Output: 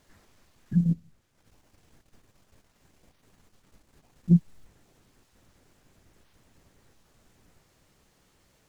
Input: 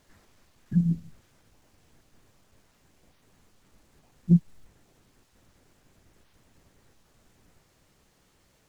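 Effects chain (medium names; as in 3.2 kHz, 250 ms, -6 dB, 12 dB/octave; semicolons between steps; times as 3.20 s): 0.84–4.29 s: transient shaper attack +4 dB, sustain -9 dB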